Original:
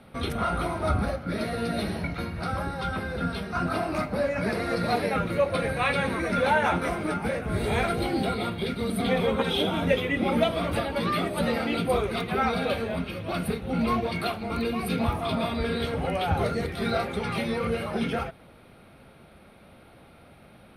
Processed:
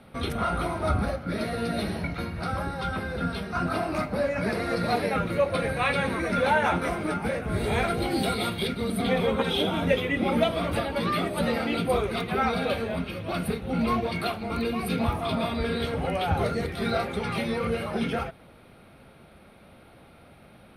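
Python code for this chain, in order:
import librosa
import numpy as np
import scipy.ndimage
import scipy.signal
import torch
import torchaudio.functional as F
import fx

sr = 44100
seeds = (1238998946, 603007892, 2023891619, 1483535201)

y = fx.high_shelf(x, sr, hz=fx.line((8.1, 4800.0), (8.66, 2700.0)), db=11.0, at=(8.1, 8.66), fade=0.02)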